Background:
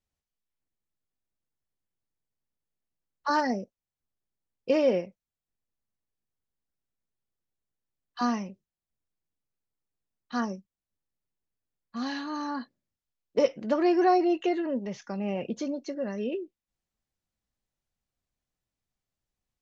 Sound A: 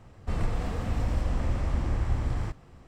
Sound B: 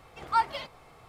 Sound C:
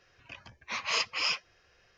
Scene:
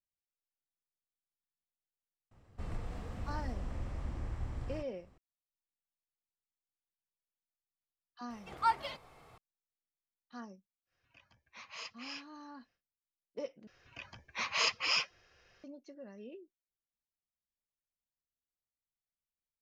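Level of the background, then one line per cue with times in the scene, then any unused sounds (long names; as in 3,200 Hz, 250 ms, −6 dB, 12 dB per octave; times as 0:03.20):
background −17.5 dB
0:02.31: mix in A −12 dB
0:08.30: mix in B −5 dB
0:10.85: mix in C −16.5 dB, fades 0.10 s + notch filter 400 Hz, Q 5.6
0:13.67: overwrite with C −1.5 dB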